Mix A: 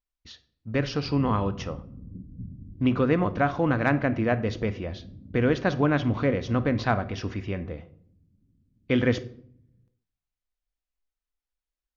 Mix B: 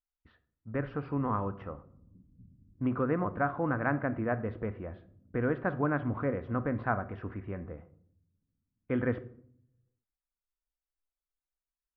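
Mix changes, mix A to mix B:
background -10.0 dB; master: add ladder low-pass 1800 Hz, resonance 35%

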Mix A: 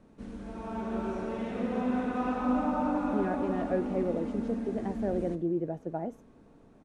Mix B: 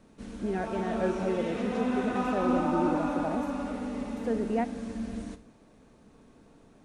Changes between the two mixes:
speech: entry -2.70 s; master: add high shelf 2200 Hz +10 dB

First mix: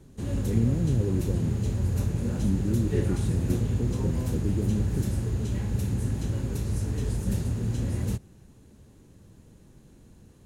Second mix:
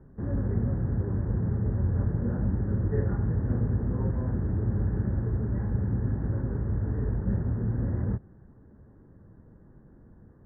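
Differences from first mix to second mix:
speech -10.0 dB; master: add steep low-pass 1800 Hz 72 dB/oct

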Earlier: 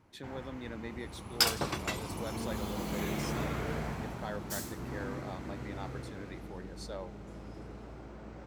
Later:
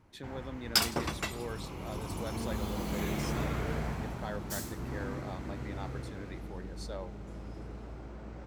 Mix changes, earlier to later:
second sound: entry -0.65 s; master: add low shelf 70 Hz +8.5 dB

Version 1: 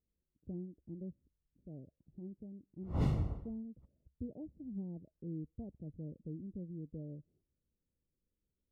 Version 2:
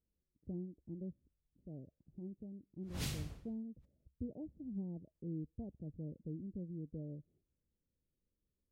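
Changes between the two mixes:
background -10.0 dB; master: remove polynomial smoothing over 65 samples

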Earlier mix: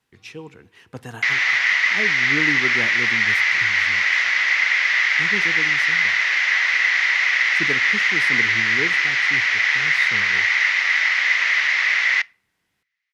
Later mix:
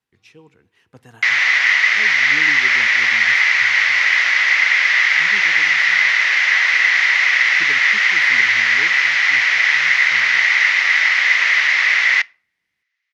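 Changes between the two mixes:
speech -9.5 dB; background +4.0 dB

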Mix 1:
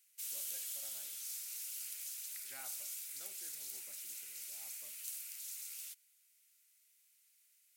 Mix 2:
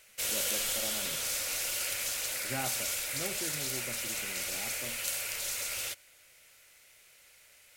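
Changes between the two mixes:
background +11.5 dB; master: remove differentiator

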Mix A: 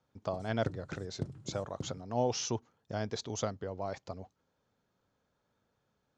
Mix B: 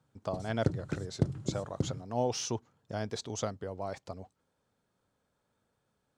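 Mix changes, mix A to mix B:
speech: remove steep low-pass 7200 Hz 72 dB/oct; background +9.0 dB

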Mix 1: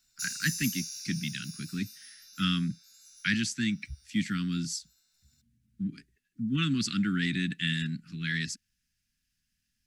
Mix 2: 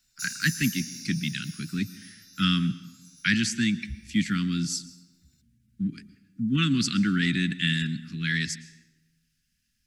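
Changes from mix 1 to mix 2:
speech +3.5 dB; reverb: on, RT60 1.0 s

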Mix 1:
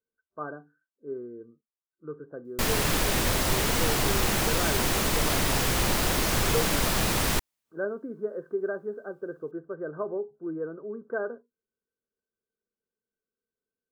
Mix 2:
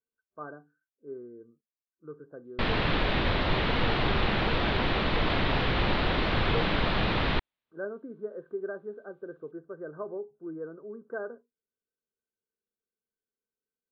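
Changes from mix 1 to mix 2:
speech -5.0 dB; master: add steep low-pass 4000 Hz 48 dB/oct

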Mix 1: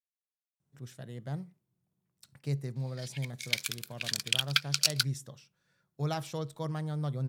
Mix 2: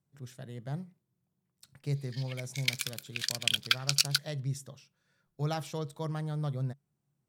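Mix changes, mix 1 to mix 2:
speech: entry -0.60 s; background: entry -0.85 s

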